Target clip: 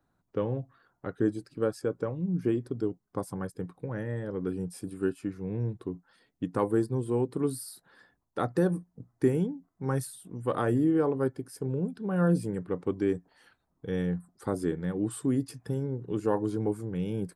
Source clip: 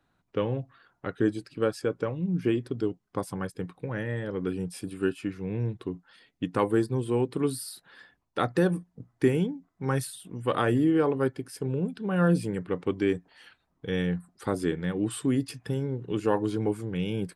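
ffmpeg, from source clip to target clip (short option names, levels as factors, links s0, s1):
-af "equalizer=f=2800:t=o:w=1.4:g=-11,volume=0.841"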